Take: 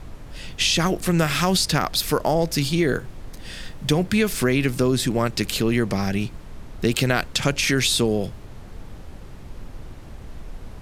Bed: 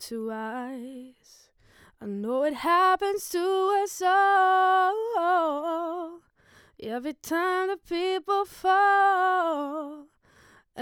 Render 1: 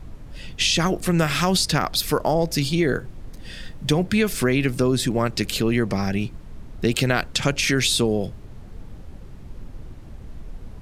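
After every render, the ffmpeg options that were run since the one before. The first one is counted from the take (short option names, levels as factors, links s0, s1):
-af "afftdn=nr=6:nf=-40"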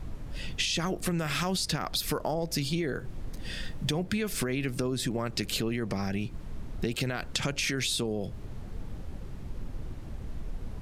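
-af "alimiter=limit=0.251:level=0:latency=1:release=16,acompressor=threshold=0.0447:ratio=6"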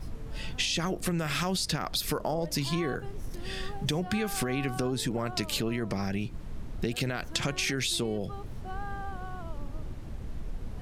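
-filter_complex "[1:a]volume=0.1[s0];[0:a][s0]amix=inputs=2:normalize=0"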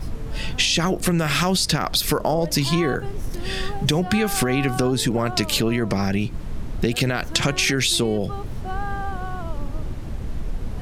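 -af "volume=2.99"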